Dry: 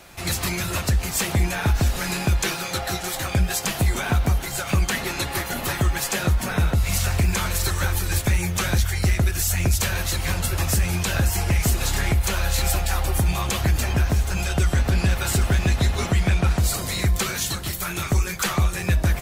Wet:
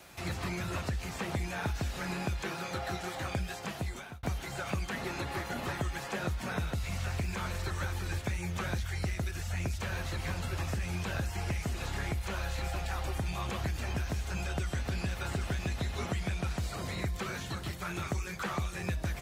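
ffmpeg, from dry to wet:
-filter_complex "[0:a]asplit=2[s0][s1];[s0]atrim=end=4.23,asetpts=PTS-STARTPTS,afade=t=out:st=3.46:d=0.77[s2];[s1]atrim=start=4.23,asetpts=PTS-STARTPTS,afade=t=in:d=0.004:c=hsin[s3];[s2][s3]concat=n=2:v=0:a=1,acrossover=split=3000[s4][s5];[s5]acompressor=threshold=0.02:ratio=4:attack=1:release=60[s6];[s4][s6]amix=inputs=2:normalize=0,highpass=54,acrossover=split=1700|3700|7900[s7][s8][s9][s10];[s7]acompressor=threshold=0.0562:ratio=4[s11];[s8]acompressor=threshold=0.01:ratio=4[s12];[s9]acompressor=threshold=0.00708:ratio=4[s13];[s10]acompressor=threshold=0.00224:ratio=4[s14];[s11][s12][s13][s14]amix=inputs=4:normalize=0,volume=0.473"

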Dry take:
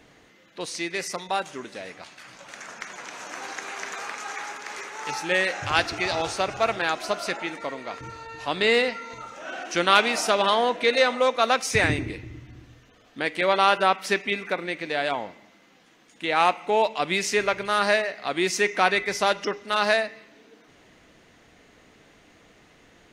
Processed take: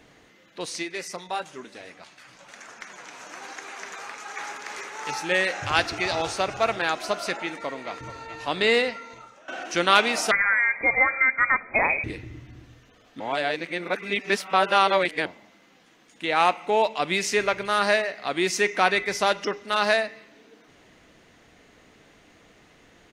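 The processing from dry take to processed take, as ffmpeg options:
-filter_complex "[0:a]asplit=3[s0][s1][s2];[s0]afade=t=out:st=0.82:d=0.02[s3];[s1]flanger=delay=2.2:depth=5.6:regen=-47:speed=1.1:shape=triangular,afade=t=in:st=0.82:d=0.02,afade=t=out:st=4.35:d=0.02[s4];[s2]afade=t=in:st=4.35:d=0.02[s5];[s3][s4][s5]amix=inputs=3:normalize=0,asplit=2[s6][s7];[s7]afade=t=in:st=7.32:d=0.01,afade=t=out:st=8.05:d=0.01,aecho=0:1:430|860|1290|1720|2150|2580|3010|3440|3870|4300|4730:0.199526|0.149645|0.112234|0.0841751|0.0631313|0.0473485|0.0355114|0.0266335|0.0199752|0.0149814|0.011236[s8];[s6][s8]amix=inputs=2:normalize=0,asettb=1/sr,asplit=3[s9][s10][s11];[s9]atrim=end=10.314[s12];[s10]atrim=start=10.31:end=12.04,asetpts=PTS-STARTPTS,afade=t=in:d=0.004:c=qsin,afade=t=out:st=1.726:d=0.004:c=qsin,lowpass=f=2200:t=q:w=0.5098,lowpass=f=2200:t=q:w=0.6013,lowpass=f=2200:t=q:w=0.9,lowpass=f=2200:t=q:w=2.563,afreqshift=-2600[s13];[s11]atrim=start=12.036[s14];[s12][s13]acrossfade=d=0.004:c1=hsin:c2=qsin[s15];[s15][s14]acrossfade=d=0.004:c1=qsin:c2=hsin,asplit=4[s16][s17][s18][s19];[s16]atrim=end=9.48,asetpts=PTS-STARTPTS,afade=t=out:st=8.73:d=0.75:silence=0.158489[s20];[s17]atrim=start=9.48:end=13.202,asetpts=PTS-STARTPTS,afade=t=in:d=0.004:c=hsin:silence=0.158489[s21];[s18]atrim=start=13.198:end=15.262,asetpts=PTS-STARTPTS,areverse[s22];[s19]atrim=start=15.258[s23];[s20][s21]concat=n=2:v=0:a=1[s24];[s24][s22]acrossfade=d=0.004:c1=hsin:c2=hsin[s25];[s25][s23]acrossfade=d=0.004:c1=hsin:c2=hsin"

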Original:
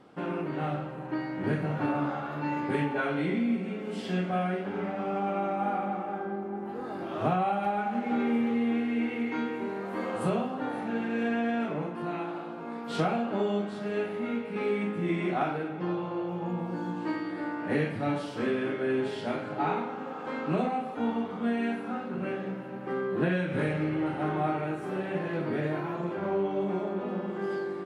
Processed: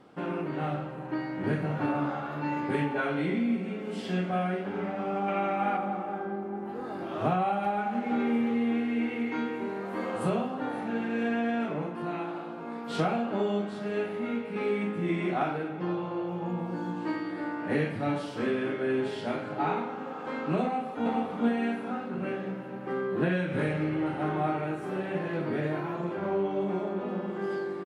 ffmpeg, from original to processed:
-filter_complex "[0:a]asettb=1/sr,asplit=3[s0][s1][s2];[s0]atrim=end=5.284[s3];[s1]atrim=start=5.28:end=5.77,asetpts=PTS-STARTPTS,afade=t=in:d=0.004:c=qsin,afade=t=out:st=0.486:d=0.004:c=qsin,equalizer=f=2300:t=o:w=1.5:g=8[s4];[s2]atrim=start=5.766[s5];[s3][s4]acrossfade=d=0.004:c1=hsin:c2=qsin[s6];[s6][s5]acrossfade=d=0.004:c1=qsin:c2=hsin,asplit=2[s7][s8];[s8]afade=t=in:st=20.63:d=0.01,afade=t=out:st=21.06:d=0.01,aecho=0:1:420|840|1260|1680|2100:0.749894|0.299958|0.119983|0.0479932|0.0191973[s9];[s7][s9]amix=inputs=2:normalize=0"

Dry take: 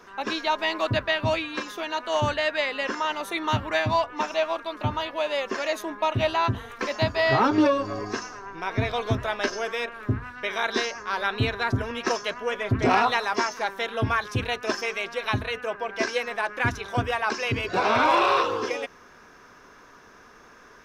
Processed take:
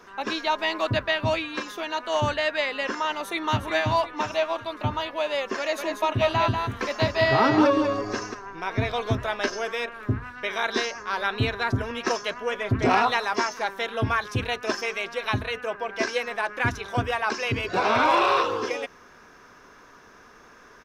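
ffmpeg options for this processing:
-filter_complex "[0:a]asplit=2[s0][s1];[s1]afade=t=in:st=3.14:d=0.01,afade=t=out:st=3.7:d=0.01,aecho=0:1:360|720|1080|1440|1800:0.354813|0.159666|0.0718497|0.0323324|0.0145496[s2];[s0][s2]amix=inputs=2:normalize=0,asplit=3[s3][s4][s5];[s3]afade=t=out:st=5.77:d=0.02[s6];[s4]aecho=1:1:190:0.562,afade=t=in:st=5.77:d=0.02,afade=t=out:st=8.33:d=0.02[s7];[s5]afade=t=in:st=8.33:d=0.02[s8];[s6][s7][s8]amix=inputs=3:normalize=0"

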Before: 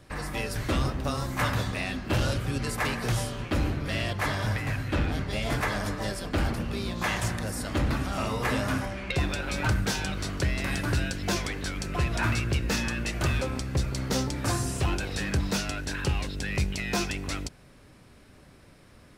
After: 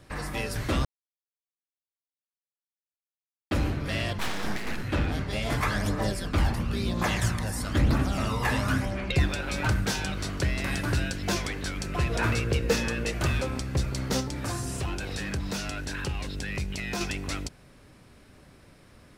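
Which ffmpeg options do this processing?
-filter_complex "[0:a]asettb=1/sr,asplit=3[s0][s1][s2];[s0]atrim=end=4.184[s3];[s1]atrim=start=4.18:end=4.83,asetpts=PTS-STARTPTS,afade=t=in:d=0.004:c=qsin,afade=t=out:st=0.646:d=0.004:c=qsin,aeval=exprs='abs(val(0))':c=same[s4];[s2]atrim=start=4.826[s5];[s3][s4]acrossfade=d=0.004:c1=hsin:c2=qsin[s6];[s6][s5]acrossfade=d=0.004:c1=qsin:c2=hsin,asplit=3[s7][s8][s9];[s7]afade=t=out:st=5.56:d=0.02[s10];[s8]aphaser=in_gain=1:out_gain=1:delay=1.2:decay=0.43:speed=1:type=triangular,afade=t=in:st=5.56:d=0.02,afade=t=out:st=9.26:d=0.02[s11];[s9]afade=t=in:st=9.26:d=0.02[s12];[s10][s11][s12]amix=inputs=3:normalize=0,asettb=1/sr,asplit=3[s13][s14][s15];[s13]atrim=end=12.094[s16];[s14]atrim=start=12.09:end=13.13,asetpts=PTS-STARTPTS,afade=t=in:d=0.004:c=qsin,afade=t=out:st=1.036:d=0.004:c=qsin,equalizer=f=470:t=o:w=0.3:g=13.5[s17];[s15]atrim=start=13.126[s18];[s16][s17]acrossfade=d=0.004:c1=hsin:c2=qsin[s19];[s19][s18]acrossfade=d=0.004:c1=qsin:c2=hsin,asettb=1/sr,asplit=3[s20][s21][s22];[s20]atrim=end=14.204[s23];[s21]atrim=start=14.2:end=17.01,asetpts=PTS-STARTPTS,afade=t=in:d=0.004:c=qsin,afade=t=out:st=2.806:d=0.004:c=qsin,acompressor=threshold=0.0355:ratio=2.5:attack=3.2:release=140:knee=1:detection=peak[s24];[s22]atrim=start=17.006[s25];[s23][s24]acrossfade=d=0.004:c1=hsin:c2=qsin[s26];[s26][s25]acrossfade=d=0.004:c1=qsin:c2=hsin,asplit=3[s27][s28][s29];[s27]atrim=end=0.85,asetpts=PTS-STARTPTS,afade=t=out:st=0.846:d=0.004:c=hsin[s30];[s28]atrim=start=0.85:end=3.51,asetpts=PTS-STARTPTS,volume=0[s31];[s29]atrim=start=3.51,asetpts=PTS-STARTPTS,afade=t=in:d=0.004:c=hsin[s32];[s30][s31][s32]concat=n=3:v=0:a=1"

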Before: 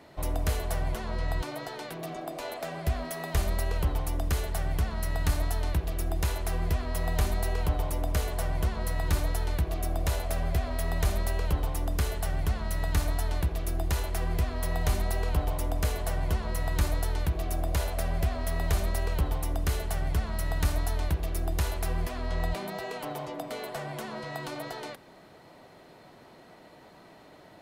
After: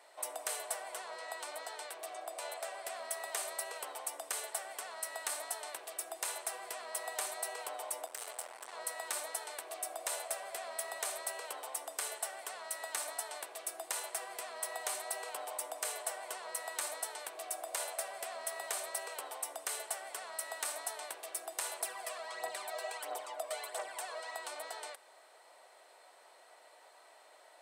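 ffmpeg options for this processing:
-filter_complex "[0:a]asettb=1/sr,asplit=3[s0][s1][s2];[s0]atrim=end=8.064[s3];[s1]atrim=start=8.06:end=8.73,asetpts=PTS-STARTPTS,afade=t=in:d=0.004:c=qsin,afade=t=out:st=0.666:d=0.004:c=qsin,asoftclip=type=hard:threshold=0.0237[s4];[s2]atrim=start=8.726[s5];[s3][s4]acrossfade=d=0.004:c1=hsin:c2=qsin[s6];[s6][s5]acrossfade=d=0.004:c1=qsin:c2=hsin,asettb=1/sr,asplit=3[s7][s8][s9];[s7]atrim=end=21.804[s10];[s8]atrim=start=21.8:end=24.33,asetpts=PTS-STARTPTS,afade=t=in:d=0.004:c=qsin,afade=t=out:st=2.526:d=0.004:c=qsin,aphaser=in_gain=1:out_gain=1:delay=1.9:decay=0.54:speed=1.5:type=triangular[s11];[s9]atrim=start=24.326[s12];[s10][s11]acrossfade=d=0.004:c1=hsin:c2=qsin[s13];[s13][s12]acrossfade=d=0.004:c1=qsin:c2=hsin,highpass=f=550:w=0.5412,highpass=f=550:w=1.3066,equalizer=f=8400:w=2.5:g=14.5,bandreject=f=6900:w=26,volume=0.562"

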